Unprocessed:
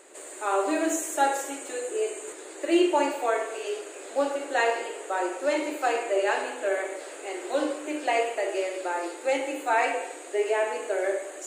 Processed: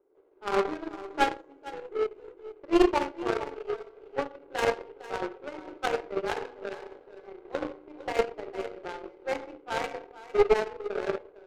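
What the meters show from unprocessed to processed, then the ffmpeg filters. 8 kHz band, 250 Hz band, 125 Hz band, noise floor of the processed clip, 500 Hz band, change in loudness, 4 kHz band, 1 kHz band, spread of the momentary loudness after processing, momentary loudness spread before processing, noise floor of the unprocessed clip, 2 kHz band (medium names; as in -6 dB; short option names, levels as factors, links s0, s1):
-15.5 dB, -2.5 dB, no reading, -56 dBFS, -3.0 dB, -3.0 dB, -3.5 dB, -5.0 dB, 17 LU, 9 LU, -42 dBFS, -6.0 dB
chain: -filter_complex "[0:a]tremolo=f=1.7:d=0.33,highpass=230,equalizer=f=420:t=q:w=4:g=8,equalizer=f=630:t=q:w=4:g=-8,equalizer=f=2600:t=q:w=4:g=-4,lowpass=f=5400:w=0.5412,lowpass=f=5400:w=1.3066,adynamicsmooth=sensitivity=3.5:basefreq=570,asuperstop=centerf=1800:order=4:qfactor=7.8,asplit=2[s0][s1];[s1]aecho=0:1:455:0.376[s2];[s0][s2]amix=inputs=2:normalize=0,aeval=exprs='0.299*(cos(1*acos(clip(val(0)/0.299,-1,1)))-cos(1*PI/2))+0.106*(cos(2*acos(clip(val(0)/0.299,-1,1)))-cos(2*PI/2))+0.0335*(cos(7*acos(clip(val(0)/0.299,-1,1)))-cos(7*PI/2))+0.0119*(cos(8*acos(clip(val(0)/0.299,-1,1)))-cos(8*PI/2))':c=same"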